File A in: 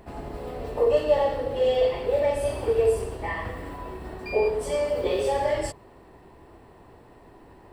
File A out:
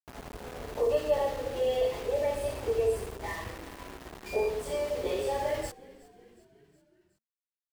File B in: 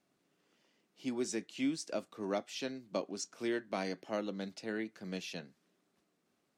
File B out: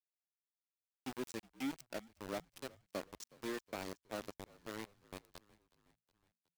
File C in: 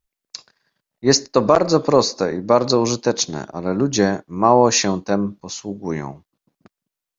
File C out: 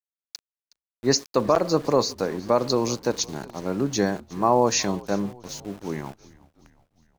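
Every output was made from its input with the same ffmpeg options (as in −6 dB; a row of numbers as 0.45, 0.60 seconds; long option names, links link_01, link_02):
-filter_complex "[0:a]aeval=exprs='val(0)*gte(abs(val(0)),0.0211)':channel_layout=same,asplit=5[link_01][link_02][link_03][link_04][link_05];[link_02]adelay=367,afreqshift=-59,volume=-22dB[link_06];[link_03]adelay=734,afreqshift=-118,volume=-26.6dB[link_07];[link_04]adelay=1101,afreqshift=-177,volume=-31.2dB[link_08];[link_05]adelay=1468,afreqshift=-236,volume=-35.7dB[link_09];[link_01][link_06][link_07][link_08][link_09]amix=inputs=5:normalize=0,volume=-6dB"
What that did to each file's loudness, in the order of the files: −6.0, −7.5, −6.0 LU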